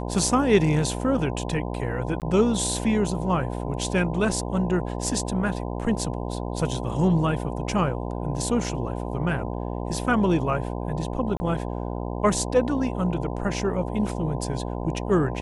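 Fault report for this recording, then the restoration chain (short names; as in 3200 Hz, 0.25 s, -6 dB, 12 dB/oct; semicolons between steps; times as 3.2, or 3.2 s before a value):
buzz 60 Hz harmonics 17 -30 dBFS
2.2–2.22 gap 18 ms
11.37–11.4 gap 30 ms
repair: de-hum 60 Hz, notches 17; interpolate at 2.2, 18 ms; interpolate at 11.37, 30 ms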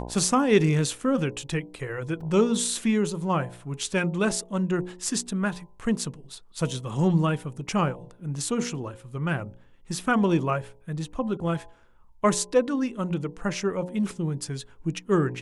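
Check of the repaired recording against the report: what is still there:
none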